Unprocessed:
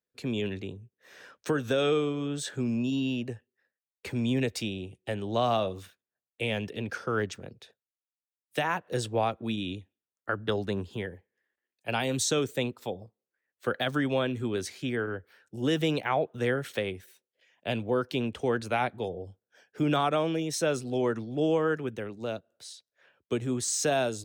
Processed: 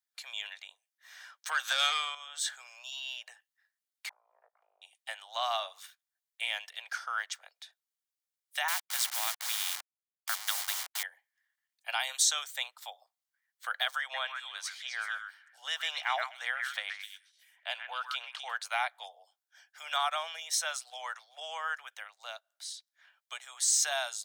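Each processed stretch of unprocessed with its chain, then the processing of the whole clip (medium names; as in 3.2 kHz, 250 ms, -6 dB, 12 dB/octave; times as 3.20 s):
1.51–2.15 s: overdrive pedal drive 14 dB, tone 7.8 kHz, clips at -15.5 dBFS + band-stop 5.6 kHz, Q 16
4.09–4.82 s: elliptic low-pass 1.2 kHz, stop band 70 dB + compression 5:1, threshold -33 dBFS + AM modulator 54 Hz, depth 90%
8.68–11.03 s: send-on-delta sampling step -37.5 dBFS + spectrum-flattening compressor 2:1
14.01–18.56 s: treble shelf 8.6 kHz -9.5 dB + repeats whose band climbs or falls 128 ms, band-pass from 1.6 kHz, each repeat 1.4 oct, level -2 dB
whole clip: steep high-pass 690 Hz 48 dB/octave; tilt shelf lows -6.5 dB; band-stop 2.6 kHz, Q 8.8; trim -2.5 dB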